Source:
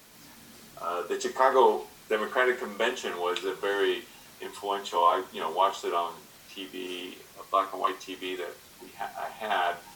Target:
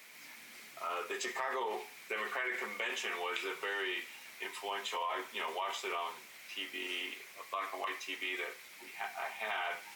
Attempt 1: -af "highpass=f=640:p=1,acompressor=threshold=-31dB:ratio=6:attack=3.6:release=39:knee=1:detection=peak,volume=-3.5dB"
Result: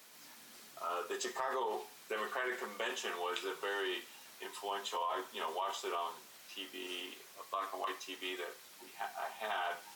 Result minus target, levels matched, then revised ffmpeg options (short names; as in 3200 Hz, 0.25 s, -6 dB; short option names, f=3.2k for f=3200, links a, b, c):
2000 Hz band -3.0 dB
-af "highpass=f=640:p=1,equalizer=f=2.2k:w=2.7:g=13.5,acompressor=threshold=-31dB:ratio=6:attack=3.6:release=39:knee=1:detection=peak,volume=-3.5dB"